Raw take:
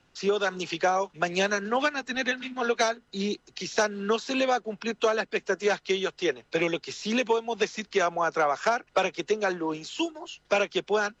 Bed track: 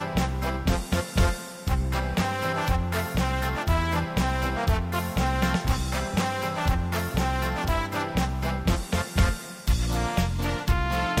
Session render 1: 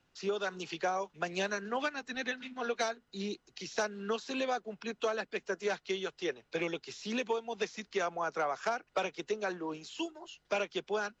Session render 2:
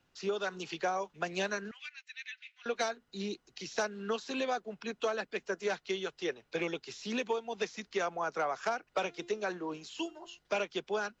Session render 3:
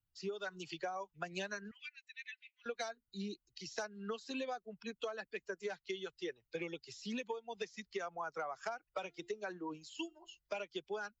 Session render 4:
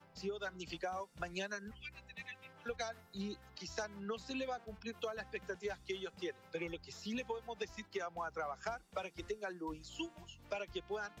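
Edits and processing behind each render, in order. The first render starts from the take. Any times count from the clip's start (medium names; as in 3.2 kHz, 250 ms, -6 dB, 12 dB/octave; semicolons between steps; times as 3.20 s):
trim -8.5 dB
1.71–2.66 s: ladder high-pass 2 kHz, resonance 55%; 8.91–10.39 s: de-hum 347.4 Hz, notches 34
expander on every frequency bin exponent 1.5; compression 4:1, threshold -38 dBFS, peak gain reduction 8.5 dB
add bed track -33.5 dB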